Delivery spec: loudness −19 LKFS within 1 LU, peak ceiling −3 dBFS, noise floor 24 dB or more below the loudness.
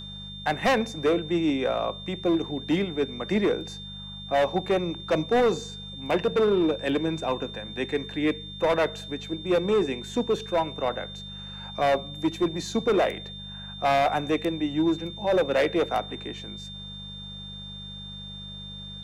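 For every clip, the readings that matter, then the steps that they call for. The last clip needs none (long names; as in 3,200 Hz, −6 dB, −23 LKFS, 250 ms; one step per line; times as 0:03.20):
mains hum 50 Hz; hum harmonics up to 200 Hz; level of the hum −41 dBFS; interfering tone 3,600 Hz; level of the tone −39 dBFS; integrated loudness −26.5 LKFS; sample peak −15.0 dBFS; target loudness −19.0 LKFS
→ hum removal 50 Hz, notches 4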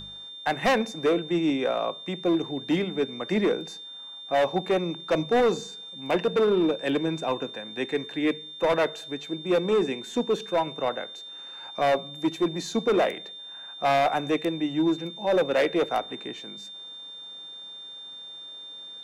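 mains hum none found; interfering tone 3,600 Hz; level of the tone −39 dBFS
→ notch filter 3,600 Hz, Q 30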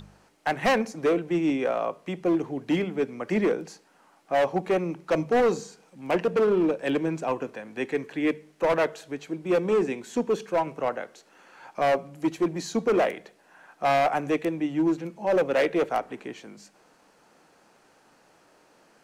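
interfering tone none found; integrated loudness −26.5 LKFS; sample peak −15.5 dBFS; target loudness −19.0 LKFS
→ level +7.5 dB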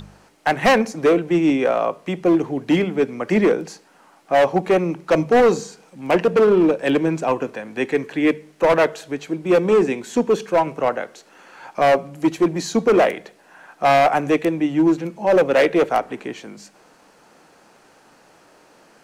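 integrated loudness −19.0 LKFS; sample peak −8.0 dBFS; background noise floor −53 dBFS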